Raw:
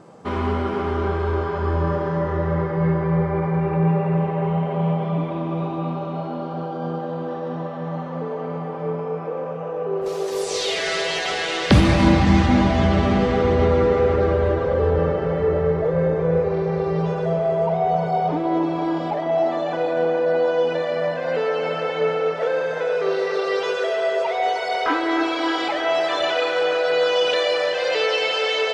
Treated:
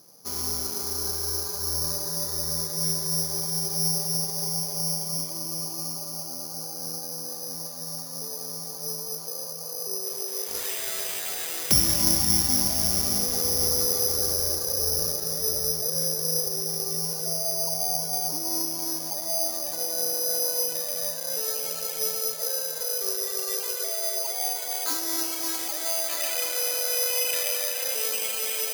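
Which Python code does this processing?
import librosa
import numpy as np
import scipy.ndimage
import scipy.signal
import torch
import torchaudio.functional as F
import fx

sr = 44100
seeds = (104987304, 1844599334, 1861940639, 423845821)

y = (np.kron(x[::8], np.eye(8)[0]) * 8)[:len(x)]
y = fx.peak_eq(y, sr, hz=2400.0, db=6.0, octaves=0.78, at=(26.09, 27.93))
y = F.gain(torch.from_numpy(y), -16.0).numpy()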